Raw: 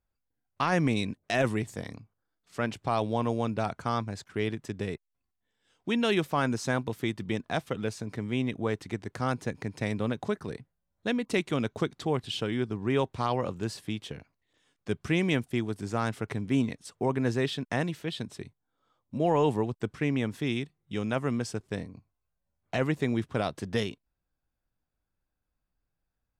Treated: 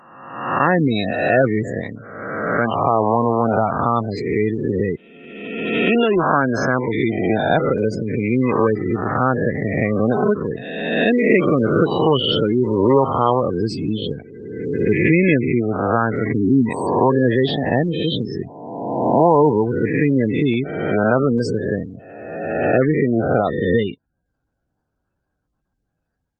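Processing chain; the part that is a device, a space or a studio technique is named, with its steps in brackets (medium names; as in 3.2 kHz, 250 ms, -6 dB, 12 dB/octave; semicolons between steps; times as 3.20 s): reverse spectral sustain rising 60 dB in 1.46 s; 17.40–18.39 s: dynamic bell 1.4 kHz, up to -4 dB, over -41 dBFS, Q 0.9; noise-suppressed video call (high-pass 110 Hz 6 dB/octave; spectral gate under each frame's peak -15 dB strong; level rider gain up to 13 dB; Opus 32 kbps 48 kHz)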